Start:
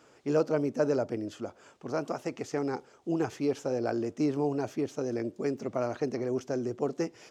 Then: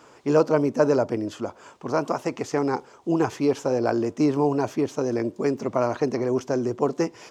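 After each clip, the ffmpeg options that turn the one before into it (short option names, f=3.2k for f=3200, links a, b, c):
-af "equalizer=f=1k:w=4.1:g=8.5,volume=7dB"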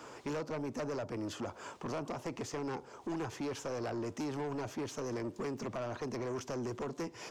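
-filter_complex "[0:a]acrossover=split=130|970[a][b][c];[a]acompressor=threshold=-46dB:ratio=4[d];[b]acompressor=threshold=-35dB:ratio=4[e];[c]acompressor=threshold=-45dB:ratio=4[f];[d][e][f]amix=inputs=3:normalize=0,asoftclip=type=tanh:threshold=-35dB,volume=1.5dB"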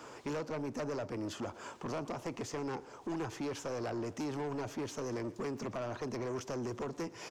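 -af "aecho=1:1:119|238|357|476:0.0891|0.0499|0.0279|0.0157"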